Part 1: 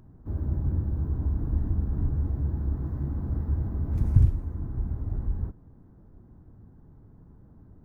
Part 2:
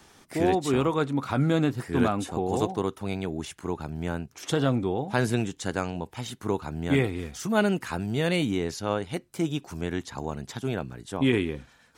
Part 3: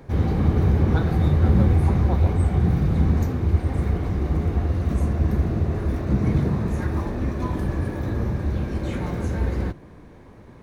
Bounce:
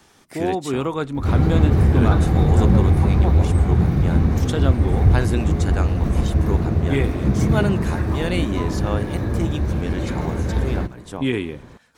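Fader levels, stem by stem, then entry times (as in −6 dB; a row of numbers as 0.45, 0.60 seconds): +2.0, +1.0, +2.5 decibels; 0.90, 0.00, 1.15 seconds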